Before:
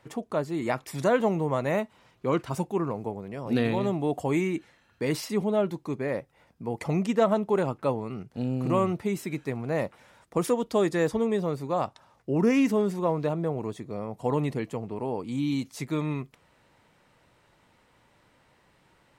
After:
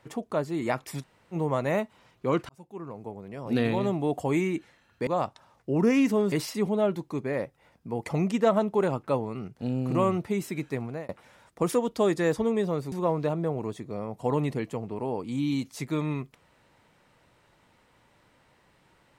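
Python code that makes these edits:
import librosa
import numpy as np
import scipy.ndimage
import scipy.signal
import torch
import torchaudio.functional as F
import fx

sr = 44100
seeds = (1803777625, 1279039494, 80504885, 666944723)

y = fx.edit(x, sr, fx.room_tone_fill(start_s=1.01, length_s=0.33, crossfade_s=0.06),
    fx.fade_in_span(start_s=2.49, length_s=1.15),
    fx.fade_out_span(start_s=9.58, length_s=0.26),
    fx.move(start_s=11.67, length_s=1.25, to_s=5.07), tone=tone)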